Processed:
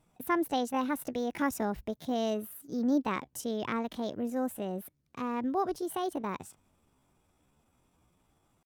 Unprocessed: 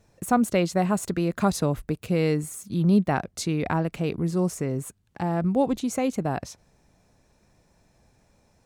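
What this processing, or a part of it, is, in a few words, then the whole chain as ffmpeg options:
chipmunk voice: -filter_complex "[0:a]asettb=1/sr,asplit=3[s0][s1][s2];[s0]atrim=end=2.354[s3];[s1]atrim=start=2.35:end=2.81,asetpts=PTS-STARTPTS,afade=t=in:d=0.004:c=qsin,afade=t=out:st=0.456:d=0.004:c=qsin,equalizer=f=900:t=o:w=0.31:g=8.5[s4];[s2]atrim=start=2.806[s5];[s3][s4]acrossfade=d=0.004:c1=hsin:c2=qsin[s6];[s6][s5]acrossfade=d=0.004:c1=qsin:c2=hsin,asetrate=62367,aresample=44100,atempo=0.707107,volume=0.398"

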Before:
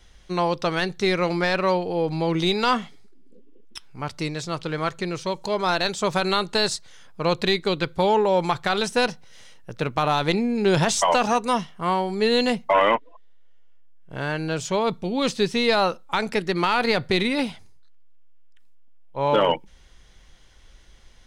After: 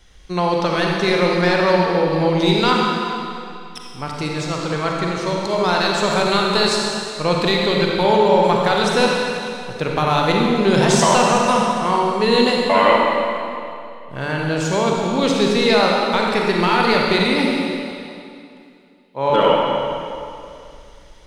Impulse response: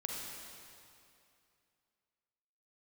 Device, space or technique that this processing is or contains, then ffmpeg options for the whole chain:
stairwell: -filter_complex "[0:a]asettb=1/sr,asplit=3[s0][s1][s2];[s0]atrim=end=16.944[s3];[s1]atrim=start=16.94:end=19.3,asetpts=PTS-STARTPTS,afade=t=in:d=0.004:c=qsin,afade=t=out:st=2.356:d=0.004:c=qsin,highpass=140[s4];[s2]atrim=start=19.296[s5];[s3][s4]acrossfade=d=0.004:c1=hsin:c2=qsin[s6];[s6][s5]acrossfade=d=0.004:c1=qsin:c2=hsin[s7];[1:a]atrim=start_sample=2205[s8];[s7][s8]afir=irnorm=-1:irlink=0,volume=1.68"

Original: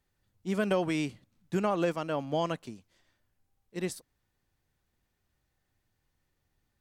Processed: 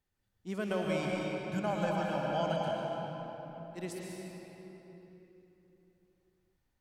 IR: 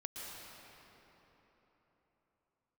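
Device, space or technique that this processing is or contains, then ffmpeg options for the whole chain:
cathedral: -filter_complex "[0:a]asettb=1/sr,asplit=3[s0][s1][s2];[s0]atrim=end=0.854[s3];[s1]atrim=start=0.85:end=2.6,asetpts=PTS-STARTPTS,afade=t=in:d=0.004:c=qsin,afade=t=out:st=1.746:d=0.004:c=qsin,aecho=1:1:1.3:0.74,atrim=end_sample=77175[s4];[s2]atrim=start=2.596[s5];[s3][s4]acrossfade=d=0.004:c1=hsin:c2=qsin[s6];[s6][s5]acrossfade=d=0.004:c1=qsin:c2=hsin[s7];[1:a]atrim=start_sample=2205[s8];[s7][s8]afir=irnorm=-1:irlink=0,volume=0.794"

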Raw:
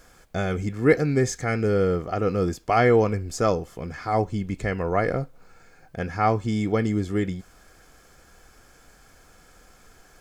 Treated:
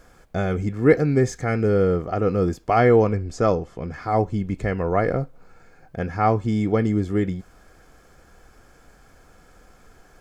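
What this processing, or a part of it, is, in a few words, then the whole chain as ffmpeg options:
behind a face mask: -filter_complex "[0:a]asettb=1/sr,asplit=3[s0][s1][s2];[s0]atrim=end=3.074[s3];[s1]atrim=start=3.07:end=3.93,asetpts=PTS-STARTPTS,afade=t=in:d=0.004:c=qsin,afade=t=out:st=0.856:d=0.004:c=qsin,lowpass=7500[s4];[s2]atrim=start=3.926[s5];[s3][s4]acrossfade=d=0.004:c1=hsin:c2=qsin[s6];[s6][s5]acrossfade=d=0.004:c1=qsin:c2=hsin,highshelf=f=2000:g=-8,volume=1.41"

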